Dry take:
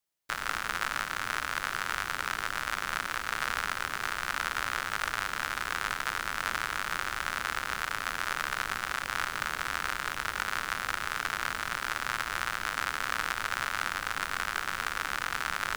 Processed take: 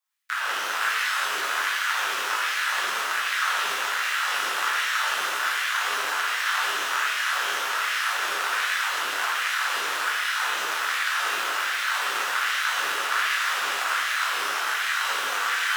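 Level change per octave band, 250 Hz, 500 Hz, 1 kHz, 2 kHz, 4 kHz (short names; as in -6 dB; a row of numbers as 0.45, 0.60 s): -2.5, +6.0, +6.5, +7.5, +10.0 dB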